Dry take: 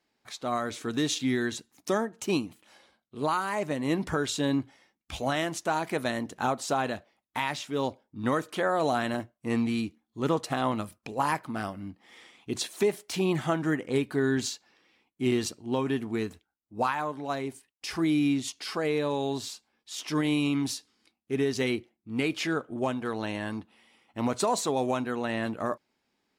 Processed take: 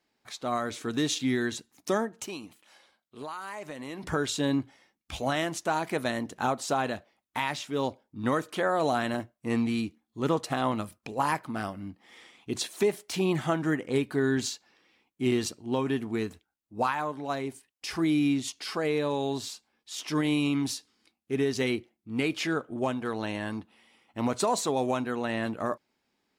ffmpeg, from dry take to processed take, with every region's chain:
ffmpeg -i in.wav -filter_complex "[0:a]asettb=1/sr,asplit=3[link_01][link_02][link_03];[link_01]atrim=end=2.264[link_04];[link_02]atrim=start=2.26:end=4.04,asetpts=PTS-STARTPTS,afade=type=in:duration=0.004:curve=qsin,afade=type=out:start_time=1.776:duration=0.004:curve=qsin,lowshelf=frequency=390:gain=-10,acompressor=threshold=-35dB:ratio=4:attack=3.2:release=140:knee=1:detection=peak[link_05];[link_03]atrim=start=4.036[link_06];[link_04][link_05]acrossfade=duration=0.004:curve1=hsin:curve2=qsin[link_07];[link_07][link_06]acrossfade=duration=0.004:curve1=qsin:curve2=hsin" out.wav

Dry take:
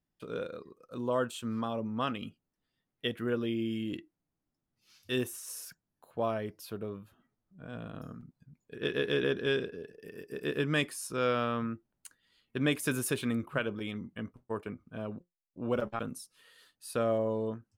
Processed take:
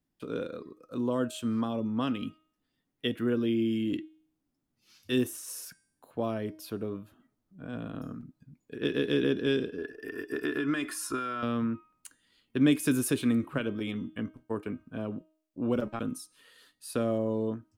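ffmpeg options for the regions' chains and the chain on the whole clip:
ffmpeg -i in.wav -filter_complex "[0:a]asettb=1/sr,asplit=3[link_01][link_02][link_03];[link_01]atrim=end=9.784[link_04];[link_02]atrim=start=9.78:end=11.43,asetpts=PTS-STARTPTS,afade=type=in:duration=0.004:curve=qsin,afade=type=out:start_time=1.646:duration=0.004:curve=qsin,equalizer=frequency=1400:width=1.3:gain=13,aecho=1:1:2.9:0.6,atrim=end_sample=72765,acompressor=threshold=-29dB:ratio=12:attack=3.2:release=140:knee=1:detection=peak[link_05];[link_03]atrim=start=11.426[link_06];[link_04][link_05]acrossfade=duration=0.004:curve1=hsin:curve2=qsin[link_07];[link_07][link_06]acrossfade=duration=0.004:curve1=qsin:curve2=hsin,equalizer=frequency=280:width=2.7:gain=8,bandreject=frequency=314:width_type=h:width=4,bandreject=frequency=628:width_type=h:width=4,bandreject=frequency=942:width_type=h:width=4,bandreject=frequency=1256:width_type=h:width=4,bandreject=frequency=1570:width_type=h:width=4,bandreject=frequency=1884:width_type=h:width=4,bandreject=frequency=2198:width_type=h:width=4,bandreject=frequency=2512:width_type=h:width=4,bandreject=frequency=2826:width_type=h:width=4,bandreject=frequency=3140:width_type=h:width=4,bandreject=frequency=3454:width_type=h:width=4,bandreject=frequency=3768:width_type=h:width=4,bandreject=frequency=4082:width_type=h:width=4,bandreject=frequency=4396:width_type=h:width=4,bandreject=frequency=4710:width_type=h:width=4,bandreject=frequency=5024:width_type=h:width=4,bandreject=frequency=5338:width_type=h:width=4,bandreject=frequency=5652:width_type=h:width=4,bandreject=frequency=5966:width_type=h:width=4,bandreject=frequency=6280:width_type=h:width=4,bandreject=frequency=6594:width_type=h:width=4,bandreject=frequency=6908:width_type=h:width=4,bandreject=frequency=7222:width_type=h:width=4,bandreject=frequency=7536:width_type=h:width=4,bandreject=frequency=7850:width_type=h:width=4,bandreject=frequency=8164:width_type=h:width=4,bandreject=frequency=8478:width_type=h:width=4,bandreject=frequency=8792:width_type=h:width=4,bandreject=frequency=9106:width_type=h:width=4,bandreject=frequency=9420:width_type=h:width=4,bandreject=frequency=9734:width_type=h:width=4,acrossover=split=420|3000[link_08][link_09][link_10];[link_09]acompressor=threshold=-39dB:ratio=2[link_11];[link_08][link_11][link_10]amix=inputs=3:normalize=0,volume=2dB" out.wav

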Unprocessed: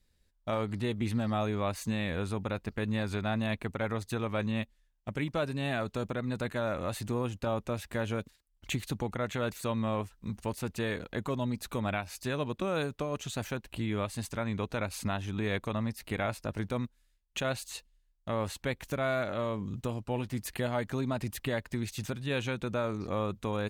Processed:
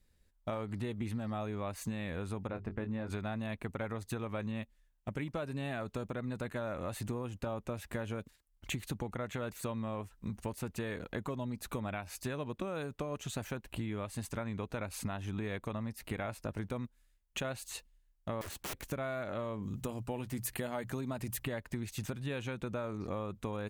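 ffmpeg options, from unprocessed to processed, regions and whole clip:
ffmpeg -i in.wav -filter_complex "[0:a]asettb=1/sr,asplit=3[link_01][link_02][link_03];[link_01]atrim=end=2.474[link_04];[link_02]atrim=start=2.47:end=3.1,asetpts=PTS-STARTPTS,afade=type=in:duration=0.004:curve=qsin,afade=type=out:start_time=0.626:duration=0.004:curve=qsin,lowpass=frequency=1400:poles=1,bandreject=frequency=50:width_type=h:width=6,bandreject=frequency=100:width_type=h:width=6,bandreject=frequency=150:width_type=h:width=6,bandreject=frequency=200:width_type=h:width=6,bandreject=frequency=250:width_type=h:width=6,bandreject=frequency=300:width_type=h:width=6,bandreject=frequency=350:width_type=h:width=6,bandreject=frequency=400:width_type=h:width=6,asplit=2[link_05][link_06];[link_06]adelay=22,volume=-9.5dB[link_07];[link_05][link_07]amix=inputs=2:normalize=0,atrim=end_sample=27783[link_08];[link_03]atrim=start=3.096[link_09];[link_04][link_08]acrossfade=duration=0.004:curve1=hsin:curve2=qsin[link_10];[link_10][link_09]acrossfade=duration=0.004:curve1=qsin:curve2=hsin,asettb=1/sr,asplit=3[link_11][link_12][link_13];[link_11]atrim=end=18.414[link_14];[link_12]atrim=start=18.41:end=18.88,asetpts=PTS-STARTPTS,afade=type=in:duration=0.004:curve=qsin,afade=type=out:start_time=0.466:duration=0.004:curve=qsin,bandreject=frequency=960:width=11,aeval=exprs='(mod(50.1*val(0)+1,2)-1)/50.1':channel_layout=same[link_15];[link_13]atrim=start=18.876[link_16];[link_14][link_15]acrossfade=duration=0.004:curve1=hsin:curve2=qsin[link_17];[link_17][link_16]acrossfade=duration=0.004:curve1=qsin:curve2=hsin,asettb=1/sr,asplit=3[link_18][link_19][link_20];[link_18]atrim=end=19.624[link_21];[link_19]atrim=start=19.62:end=21.44,asetpts=PTS-STARTPTS,afade=type=in:duration=0.004:curve=qsin,afade=type=out:start_time=1.816:duration=0.004:curve=qsin,highshelf=frequency=6000:gain=8,bandreject=frequency=60:width_type=h:width=6,bandreject=frequency=120:width_type=h:width=6,bandreject=frequency=180:width_type=h:width=6[link_22];[link_20]atrim=start=21.436[link_23];[link_21][link_22]acrossfade=duration=0.004:curve1=hsin:curve2=qsin[link_24];[link_24][link_23]acrossfade=duration=0.004:curve1=qsin:curve2=hsin,equalizer=frequency=4300:width_type=o:width=1.3:gain=-4.5,acompressor=threshold=-35dB:ratio=6,volume=1dB" out.wav

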